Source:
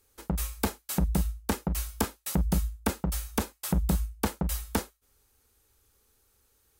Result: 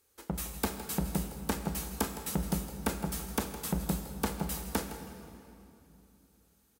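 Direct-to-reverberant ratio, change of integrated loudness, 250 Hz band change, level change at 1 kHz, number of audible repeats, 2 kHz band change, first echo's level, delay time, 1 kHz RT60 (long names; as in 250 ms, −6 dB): 6.5 dB, −4.0 dB, −3.0 dB, −2.0 dB, 1, −2.0 dB, −13.5 dB, 162 ms, 2.8 s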